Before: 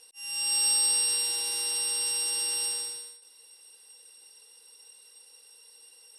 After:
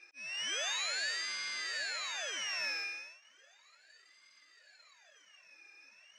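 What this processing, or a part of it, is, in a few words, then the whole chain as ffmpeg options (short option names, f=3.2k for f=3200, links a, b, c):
voice changer toy: -filter_complex "[0:a]asettb=1/sr,asplit=3[a][b][c];[a]atrim=end=2.434[d];[b]atrim=start=2.43:end=2.84,asetpts=PTS-STARTPTS,afade=t=in:d=0.004:c=qsin,afade=t=out:st=0.406:d=0.004:c=qsin,asplit=2[e][f];[f]adelay=47,volume=-5dB[g];[e][g]amix=inputs=2:normalize=0,atrim=end_sample=18081[h];[c]atrim=start=2.836[i];[d][h]acrossfade=d=0.004:c1=hsin:c2=qsin[j];[j][i]acrossfade=d=0.004:c1=qsin:c2=hsin,aeval=exprs='val(0)*sin(2*PI*1900*n/s+1900*0.65/0.35*sin(2*PI*0.35*n/s))':c=same,highpass=550,equalizer=f=600:t=q:w=4:g=7,equalizer=f=860:t=q:w=4:g=-5,equalizer=f=1.7k:t=q:w=4:g=9,equalizer=f=2.4k:t=q:w=4:g=6,equalizer=f=3.4k:t=q:w=4:g=-6,lowpass=f=4.8k:w=0.5412,lowpass=f=4.8k:w=1.3066"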